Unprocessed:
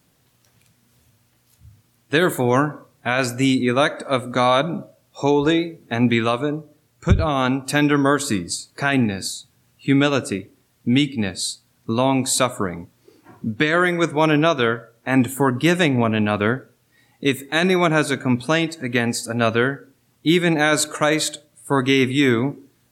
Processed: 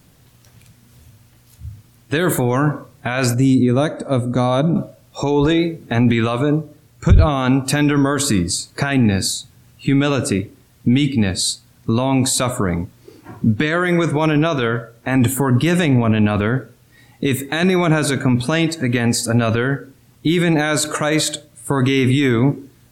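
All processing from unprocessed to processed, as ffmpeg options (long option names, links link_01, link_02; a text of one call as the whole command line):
ffmpeg -i in.wav -filter_complex "[0:a]asettb=1/sr,asplit=3[link_01][link_02][link_03];[link_01]atrim=end=3.344[link_04];[link_02]atrim=start=3.34:end=4.76,asetpts=PTS-STARTPTS,afade=type=in:duration=0.004:curve=qsin,afade=type=out:start_time=1.416:duration=0.004:curve=qsin,lowpass=9700,equalizer=frequency=2100:width=0.4:gain=-13.5,bandreject=frequency=3100:width=18[link_05];[link_03]atrim=start=4.756[link_06];[link_04][link_05]acrossfade=duration=0.004:curve1=hsin:curve2=qsin[link_07];[link_07][link_06]acrossfade=duration=0.004:curve1=qsin:curve2=hsin,alimiter=limit=-16.5dB:level=0:latency=1:release=30,lowshelf=frequency=120:gain=11.5,volume=7.5dB" out.wav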